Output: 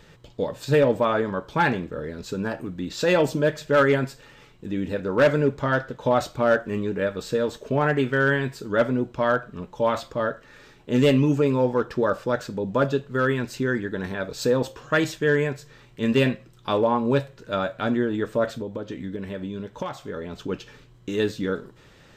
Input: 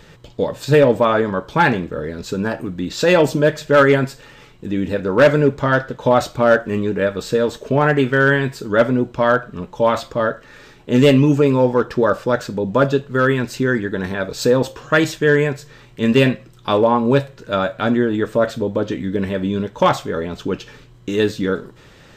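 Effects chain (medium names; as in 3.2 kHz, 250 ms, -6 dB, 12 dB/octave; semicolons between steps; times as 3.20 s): 18.49–20.49 s: compression 6:1, threshold -22 dBFS, peak gain reduction 12 dB; trim -6.5 dB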